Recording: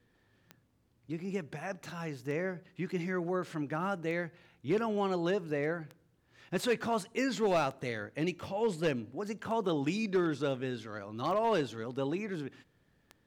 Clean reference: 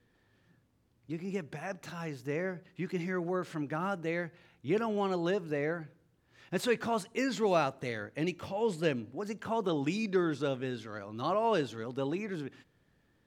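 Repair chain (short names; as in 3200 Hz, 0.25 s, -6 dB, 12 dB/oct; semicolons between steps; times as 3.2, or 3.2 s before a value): clip repair -22.5 dBFS; de-click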